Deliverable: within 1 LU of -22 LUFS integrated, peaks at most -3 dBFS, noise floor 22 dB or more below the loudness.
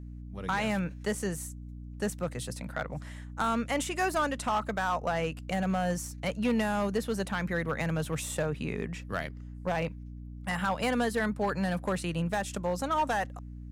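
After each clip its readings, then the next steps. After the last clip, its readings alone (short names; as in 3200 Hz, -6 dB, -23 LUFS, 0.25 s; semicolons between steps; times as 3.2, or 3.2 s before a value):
clipped 1.2%; flat tops at -22.0 dBFS; hum 60 Hz; harmonics up to 300 Hz; hum level -40 dBFS; loudness -31.5 LUFS; peak -22.0 dBFS; loudness target -22.0 LUFS
-> clip repair -22 dBFS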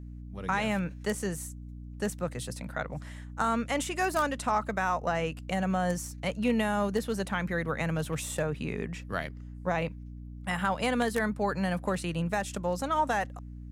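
clipped 0.0%; hum 60 Hz; harmonics up to 300 Hz; hum level -40 dBFS
-> notches 60/120/180/240/300 Hz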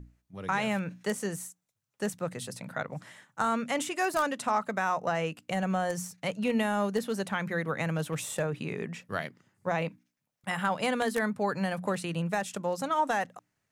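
hum none; loudness -31.5 LUFS; peak -13.0 dBFS; loudness target -22.0 LUFS
-> gain +9.5 dB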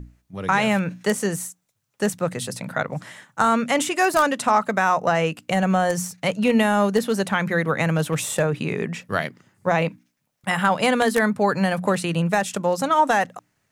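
loudness -22.0 LUFS; peak -3.5 dBFS; noise floor -72 dBFS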